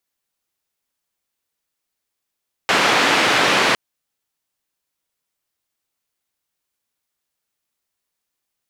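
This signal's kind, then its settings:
band-limited noise 210–2,600 Hz, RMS −16 dBFS 1.06 s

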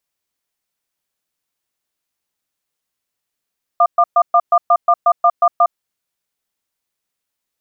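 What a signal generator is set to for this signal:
tone pair in a cadence 696 Hz, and 1,200 Hz, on 0.06 s, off 0.12 s, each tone −10.5 dBFS 1.96 s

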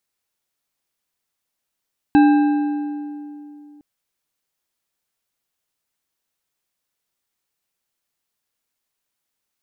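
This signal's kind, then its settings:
struck metal bar, length 1.66 s, lowest mode 294 Hz, modes 5, decay 2.83 s, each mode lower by 8 dB, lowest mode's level −8 dB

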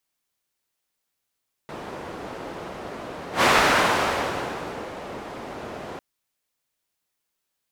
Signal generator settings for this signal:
pass-by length 4.30 s, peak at 0:01.74, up 0.12 s, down 1.64 s, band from 560 Hz, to 1,200 Hz, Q 0.76, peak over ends 18.5 dB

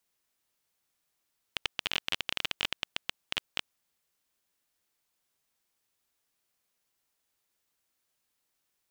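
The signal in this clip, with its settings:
Geiger counter clicks 17 per second −11 dBFS 2.14 s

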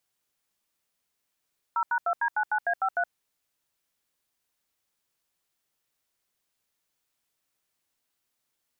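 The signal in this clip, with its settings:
touch tones "0#2D99A53", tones 70 ms, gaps 81 ms, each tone −25.5 dBFS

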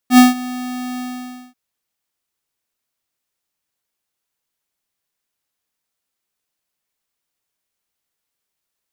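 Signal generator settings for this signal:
note with an ADSR envelope square 250 Hz, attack 80 ms, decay 157 ms, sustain −20.5 dB, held 0.89 s, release 548 ms −5 dBFS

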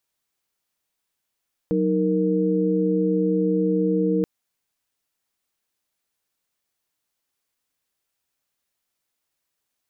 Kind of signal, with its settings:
held notes F#3/D#4/A#4 sine, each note −22.5 dBFS 2.53 s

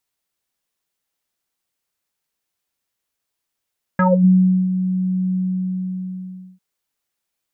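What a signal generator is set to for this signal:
subtractive voice square F#3 24 dB per octave, low-pass 220 Hz, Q 5.7, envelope 3 octaves, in 0.25 s, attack 3.4 ms, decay 0.69 s, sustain −12 dB, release 1.25 s, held 1.35 s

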